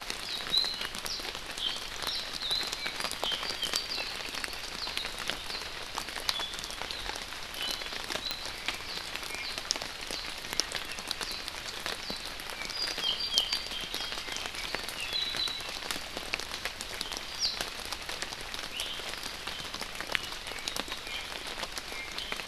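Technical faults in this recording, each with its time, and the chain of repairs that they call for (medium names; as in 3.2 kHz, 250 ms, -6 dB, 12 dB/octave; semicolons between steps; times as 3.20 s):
8.31 s: pop -13 dBFS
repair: de-click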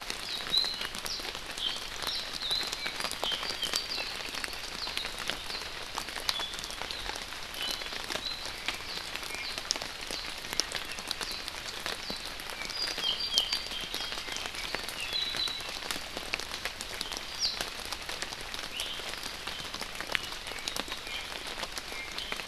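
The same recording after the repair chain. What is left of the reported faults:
8.31 s: pop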